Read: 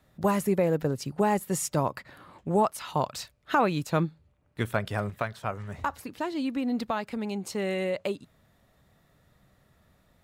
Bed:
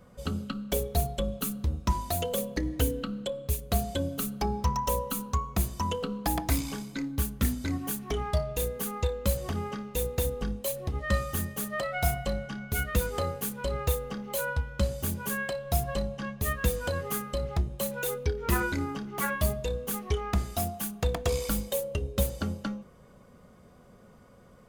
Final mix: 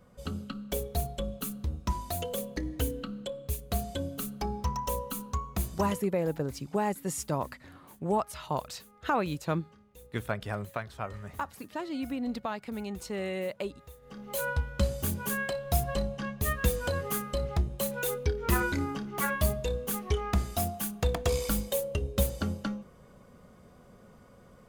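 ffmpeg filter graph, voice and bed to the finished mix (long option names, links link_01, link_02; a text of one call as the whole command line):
ffmpeg -i stem1.wav -i stem2.wav -filter_complex "[0:a]adelay=5550,volume=-4.5dB[link_01];[1:a]volume=19dB,afade=type=out:start_time=5.85:duration=0.21:silence=0.112202,afade=type=in:start_time=14.01:duration=0.46:silence=0.0707946[link_02];[link_01][link_02]amix=inputs=2:normalize=0" out.wav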